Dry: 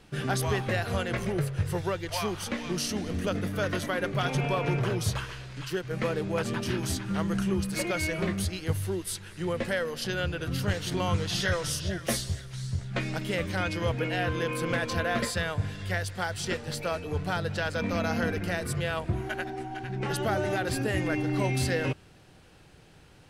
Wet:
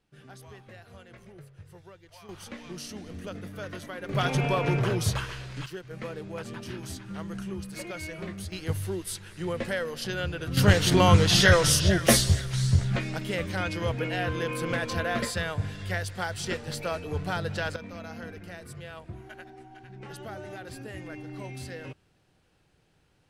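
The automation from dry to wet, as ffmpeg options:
-af "asetnsamples=n=441:p=0,asendcmd='2.29 volume volume -9dB;4.09 volume volume 2dB;5.66 volume volume -8dB;8.52 volume volume -1dB;10.57 volume volume 9.5dB;12.96 volume volume -0.5dB;17.76 volume volume -12dB',volume=0.1"

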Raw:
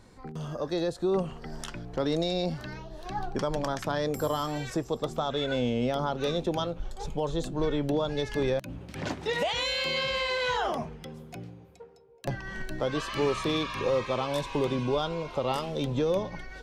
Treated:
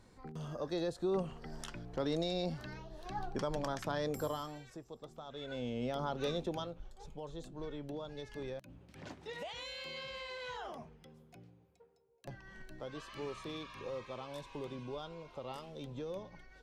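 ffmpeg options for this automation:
-af "volume=1.88,afade=t=out:st=4.17:d=0.47:silence=0.251189,afade=t=in:st=5.25:d=0.98:silence=0.237137,afade=t=out:st=6.23:d=0.68:silence=0.354813"

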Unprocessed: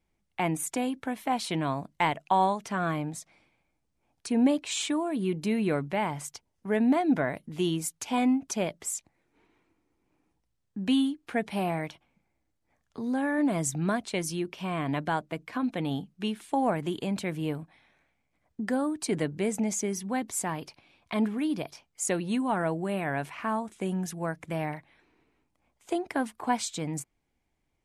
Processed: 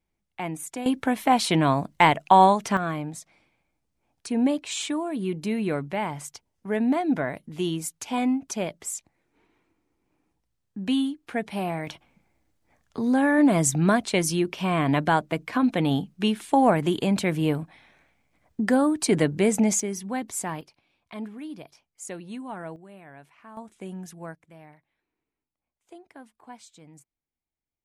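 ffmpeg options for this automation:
-af "asetnsamples=n=441:p=0,asendcmd='0.86 volume volume 8.5dB;2.77 volume volume 0.5dB;11.87 volume volume 7.5dB;19.8 volume volume 0.5dB;20.61 volume volume -8.5dB;22.76 volume volume -16.5dB;23.57 volume volume -6.5dB;24.35 volume volume -17dB',volume=0.668"

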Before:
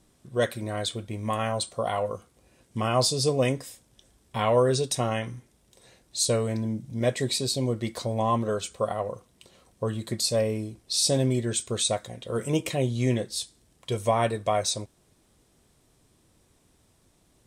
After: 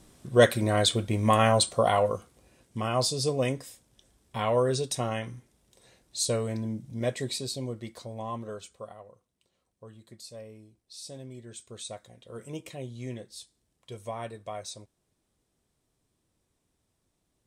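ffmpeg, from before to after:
-af "volume=4.47,afade=t=out:st=1.54:d=1.25:silence=0.316228,afade=t=out:st=6.88:d=1.14:silence=0.421697,afade=t=out:st=8.54:d=0.51:silence=0.375837,afade=t=in:st=11.28:d=0.78:silence=0.473151"

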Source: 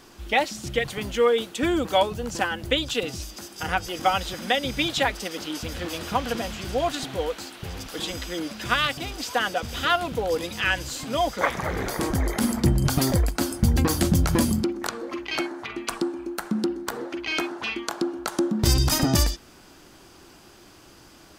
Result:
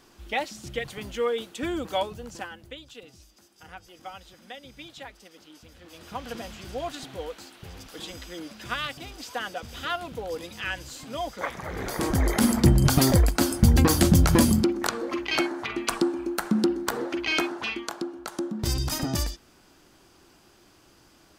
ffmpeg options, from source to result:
-af "volume=5.62,afade=t=out:st=1.98:d=0.77:silence=0.237137,afade=t=in:st=5.84:d=0.52:silence=0.281838,afade=t=in:st=11.66:d=0.68:silence=0.298538,afade=t=out:st=17.23:d=0.85:silence=0.334965"

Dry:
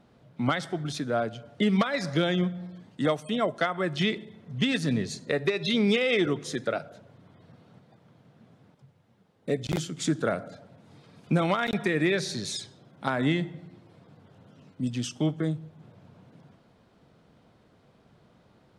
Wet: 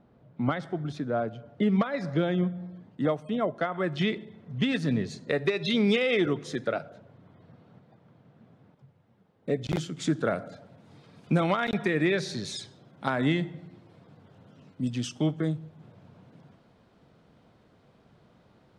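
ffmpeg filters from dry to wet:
-af "asetnsamples=n=441:p=0,asendcmd='3.72 lowpass f 2600;5.29 lowpass f 5600;6.06 lowpass f 3400;6.9 lowpass f 2200;9.62 lowpass f 4000;10.35 lowpass f 7800;11.41 lowpass f 4200;12.57 lowpass f 7100',lowpass=f=1100:p=1"

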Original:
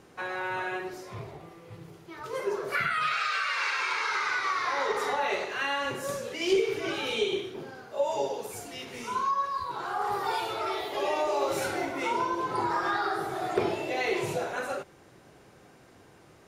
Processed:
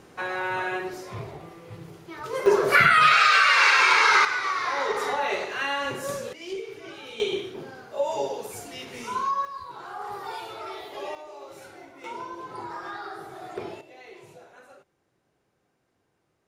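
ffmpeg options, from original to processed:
-af "asetnsamples=n=441:p=0,asendcmd='2.46 volume volume 11.5dB;4.25 volume volume 2dB;6.33 volume volume -9.5dB;7.2 volume volume 1.5dB;9.45 volume volume -5.5dB;11.15 volume volume -15dB;12.04 volume volume -8dB;13.81 volume volume -18dB',volume=1.58"

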